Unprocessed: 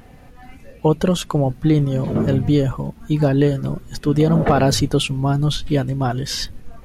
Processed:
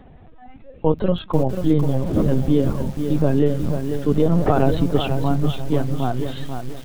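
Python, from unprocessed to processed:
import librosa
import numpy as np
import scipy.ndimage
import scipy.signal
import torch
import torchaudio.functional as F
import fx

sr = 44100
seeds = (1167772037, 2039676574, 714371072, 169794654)

y = fx.peak_eq(x, sr, hz=2200.0, db=-7.5, octaves=1.4)
y = fx.lpc_vocoder(y, sr, seeds[0], excitation='pitch_kept', order=16)
y = fx.echo_crushed(y, sr, ms=490, feedback_pct=35, bits=6, wet_db=-7)
y = y * librosa.db_to_amplitude(-1.0)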